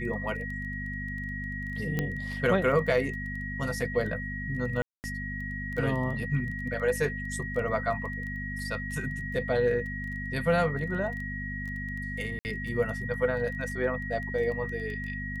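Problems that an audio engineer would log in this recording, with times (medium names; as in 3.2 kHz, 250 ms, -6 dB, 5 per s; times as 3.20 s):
crackle 13 per s -35 dBFS
hum 50 Hz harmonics 5 -37 dBFS
whine 1.9 kHz -36 dBFS
1.99 s: pop -15 dBFS
4.82–5.04 s: dropout 219 ms
12.39–12.45 s: dropout 59 ms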